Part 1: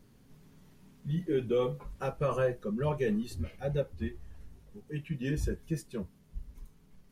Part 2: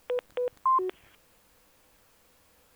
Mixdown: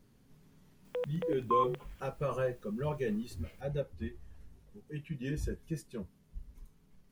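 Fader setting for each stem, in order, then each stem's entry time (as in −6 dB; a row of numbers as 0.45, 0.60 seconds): −4.0, −5.5 decibels; 0.00, 0.85 seconds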